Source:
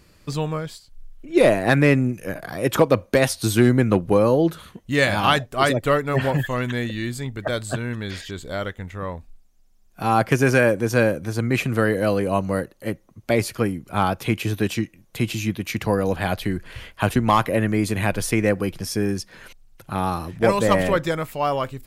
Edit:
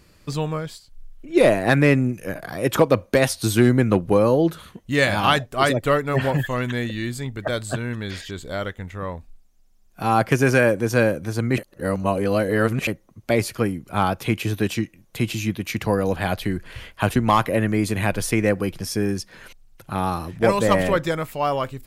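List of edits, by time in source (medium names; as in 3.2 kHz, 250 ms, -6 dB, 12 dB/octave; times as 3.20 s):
11.58–12.87 s: reverse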